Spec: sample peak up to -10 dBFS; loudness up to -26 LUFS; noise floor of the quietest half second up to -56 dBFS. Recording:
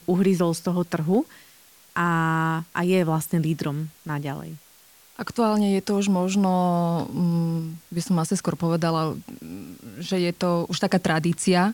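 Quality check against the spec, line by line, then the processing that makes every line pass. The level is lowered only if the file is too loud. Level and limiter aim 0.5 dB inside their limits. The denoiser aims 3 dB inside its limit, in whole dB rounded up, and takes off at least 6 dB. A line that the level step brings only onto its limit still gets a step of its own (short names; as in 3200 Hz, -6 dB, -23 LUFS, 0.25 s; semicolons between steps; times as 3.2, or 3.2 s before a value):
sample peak -8.0 dBFS: fail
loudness -24.0 LUFS: fail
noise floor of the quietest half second -53 dBFS: fail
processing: denoiser 6 dB, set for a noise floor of -53 dBFS; gain -2.5 dB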